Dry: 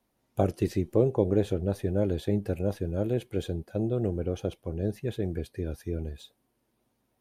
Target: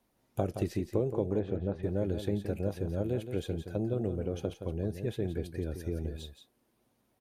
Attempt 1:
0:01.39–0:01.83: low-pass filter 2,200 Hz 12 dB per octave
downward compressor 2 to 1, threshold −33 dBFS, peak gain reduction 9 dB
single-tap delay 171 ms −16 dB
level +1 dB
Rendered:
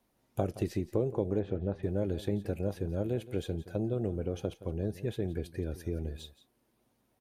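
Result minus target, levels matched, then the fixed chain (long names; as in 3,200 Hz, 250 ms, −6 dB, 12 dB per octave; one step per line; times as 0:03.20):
echo-to-direct −7 dB
0:01.39–0:01.83: low-pass filter 2,200 Hz 12 dB per octave
downward compressor 2 to 1, threshold −33 dBFS, peak gain reduction 9 dB
single-tap delay 171 ms −9 dB
level +1 dB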